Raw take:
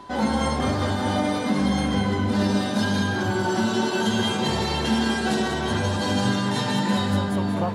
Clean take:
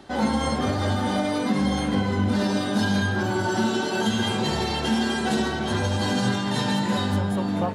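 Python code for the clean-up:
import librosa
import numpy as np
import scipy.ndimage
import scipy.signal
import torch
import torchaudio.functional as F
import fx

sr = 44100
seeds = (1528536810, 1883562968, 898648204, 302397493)

y = fx.notch(x, sr, hz=1000.0, q=30.0)
y = fx.fix_echo_inverse(y, sr, delay_ms=191, level_db=-6.5)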